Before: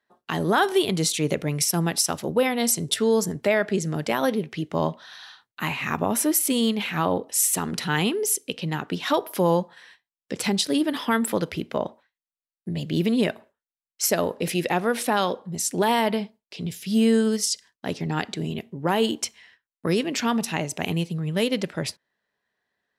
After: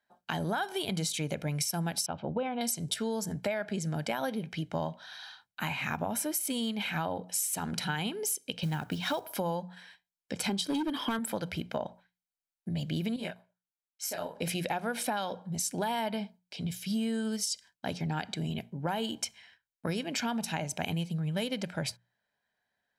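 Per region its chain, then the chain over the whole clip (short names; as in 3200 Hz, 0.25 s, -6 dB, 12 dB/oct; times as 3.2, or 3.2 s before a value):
2.06–2.61 LPF 2900 Hz 24 dB/oct + bell 1900 Hz -14 dB 0.4 oct
8.63–9.36 low shelf 130 Hz +10.5 dB + companded quantiser 6-bit
10.49–11.19 small resonant body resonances 330/1100/3200 Hz, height 12 dB, ringing for 25 ms + hard clip -12 dBFS
13.16–14.35 low shelf 430 Hz -6 dB + level quantiser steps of 9 dB + detuned doubles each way 50 cents
whole clip: notches 60/120/180 Hz; comb 1.3 ms, depth 51%; compressor, threshold -25 dBFS; gain -4 dB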